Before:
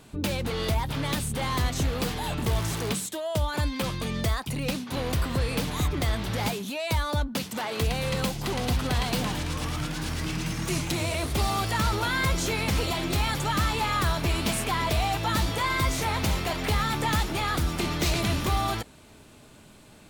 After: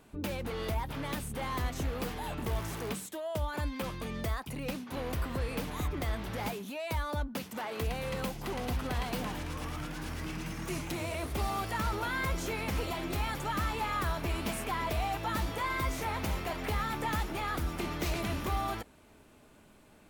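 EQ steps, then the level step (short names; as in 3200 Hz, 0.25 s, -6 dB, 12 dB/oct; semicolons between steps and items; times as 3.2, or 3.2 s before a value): graphic EQ 125/4000/8000 Hz -6/-6/-5 dB; -5.5 dB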